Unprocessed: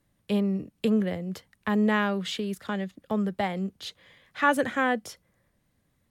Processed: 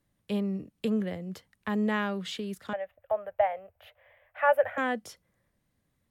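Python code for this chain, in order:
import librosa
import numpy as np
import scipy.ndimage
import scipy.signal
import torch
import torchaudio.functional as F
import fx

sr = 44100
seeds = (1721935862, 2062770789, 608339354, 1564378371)

y = fx.curve_eq(x, sr, hz=(100.0, 170.0, 330.0, 610.0, 1100.0, 1600.0, 2700.0, 4100.0, 8100.0, 14000.0), db=(0, -28, -26, 13, -1, 1, -2, -24, -27, 3), at=(2.73, 4.78))
y = y * librosa.db_to_amplitude(-4.5)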